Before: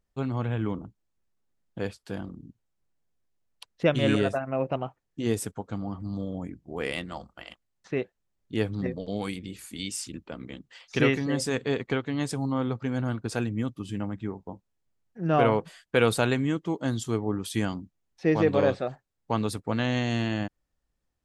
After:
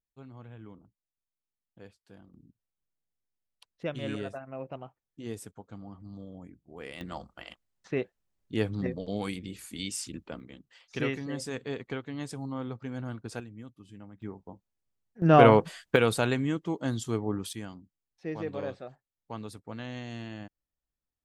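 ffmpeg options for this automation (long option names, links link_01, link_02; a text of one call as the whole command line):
ffmpeg -i in.wav -af "asetnsamples=nb_out_samples=441:pad=0,asendcmd='2.34 volume volume -11.5dB;7.01 volume volume -1.5dB;10.4 volume volume -8dB;13.4 volume volume -16dB;14.22 volume volume -6.5dB;15.22 volume volume 5dB;15.96 volume volume -2.5dB;17.53 volume volume -12.5dB',volume=-18.5dB" out.wav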